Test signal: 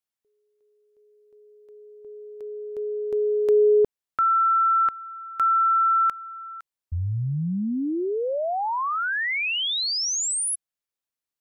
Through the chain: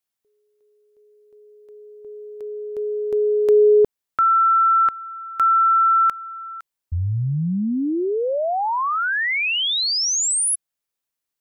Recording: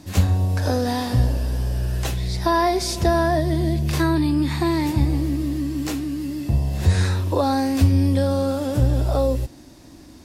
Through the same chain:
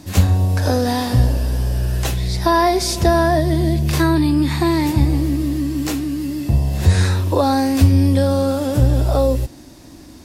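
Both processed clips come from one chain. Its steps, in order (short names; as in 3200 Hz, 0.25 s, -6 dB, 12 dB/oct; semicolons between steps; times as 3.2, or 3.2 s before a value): high shelf 9900 Hz +3.5 dB; gain +4 dB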